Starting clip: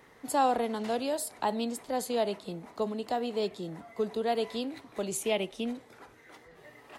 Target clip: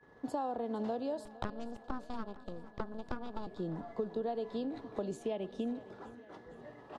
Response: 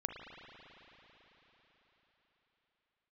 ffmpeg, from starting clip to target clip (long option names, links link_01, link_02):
-filter_complex "[0:a]acompressor=threshold=-37dB:ratio=6,asettb=1/sr,asplit=3[link_01][link_02][link_03];[link_01]atrim=end=1.254[link_04];[link_02]atrim=start=1.25:end=3.47,asetpts=PTS-STARTPTS,afade=type=in:duration=0.004:curve=qsin,afade=type=out:start_time=2.216:duration=0.004:curve=qsin,aeval=exprs='0.0447*(cos(1*acos(clip(val(0)/0.0447,-1,1)))-cos(1*PI/2))+0.02*(cos(3*acos(clip(val(0)/0.0447,-1,1)))-cos(3*PI/2))+0.02*(cos(4*acos(clip(val(0)/0.0447,-1,1)))-cos(4*PI/2))+0.00562*(cos(6*acos(clip(val(0)/0.0447,-1,1)))-cos(6*PI/2))':channel_layout=same[link_05];[link_03]atrim=start=3.466[link_06];[link_04][link_05]acrossfade=duration=0.004:curve1=hsin:curve2=qsin[link_07];[link_07][link_06]acrossfade=duration=0.004:curve1=qsin:curve2=hsin,lowpass=3000,equalizer=frequency=2200:width_type=o:width=1.2:gain=-14.5,agate=range=-33dB:threshold=-55dB:ratio=3:detection=peak,aecho=1:1:460|920|1380|1840|2300:0.126|0.0755|0.0453|0.0272|0.0163,aeval=exprs='val(0)+0.000316*sin(2*PI*1700*n/s)':channel_layout=same,volume=4.5dB"